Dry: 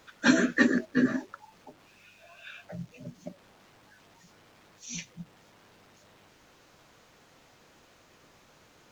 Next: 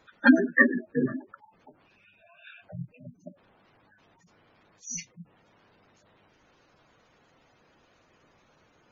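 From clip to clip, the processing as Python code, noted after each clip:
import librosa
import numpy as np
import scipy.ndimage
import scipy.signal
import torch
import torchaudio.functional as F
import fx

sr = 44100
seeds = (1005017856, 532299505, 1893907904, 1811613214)

y = fx.noise_reduce_blind(x, sr, reduce_db=10)
y = fx.spec_gate(y, sr, threshold_db=-15, keep='strong')
y = y * librosa.db_to_amplitude(7.0)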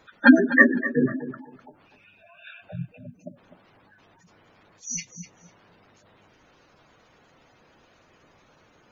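y = fx.echo_feedback(x, sr, ms=251, feedback_pct=19, wet_db=-13.5)
y = y * librosa.db_to_amplitude(4.5)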